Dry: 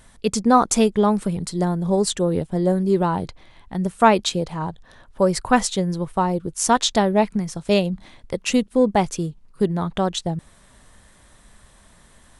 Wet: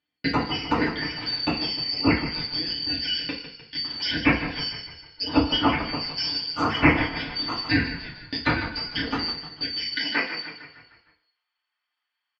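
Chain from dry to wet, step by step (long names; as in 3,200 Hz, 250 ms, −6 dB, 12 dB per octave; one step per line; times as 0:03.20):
band-splitting scrambler in four parts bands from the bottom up 4321
noise gate −38 dBFS, range −36 dB
low-pass filter 2,900 Hz 24 dB per octave
treble cut that deepens with the level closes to 1,900 Hz, closed at −29.5 dBFS
parametric band 240 Hz +12.5 dB 1 octave
in parallel at +1 dB: downward compressor, threshold −38 dBFS, peak gain reduction 17 dB
on the sum: high-pass filter sweep 65 Hz → 1,100 Hz, 0:09.82–0:10.38
echo with shifted repeats 152 ms, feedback 52%, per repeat −33 Hz, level −10.5 dB
feedback delay network reverb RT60 0.4 s, low-frequency decay 0.85×, high-frequency decay 1×, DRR −5.5 dB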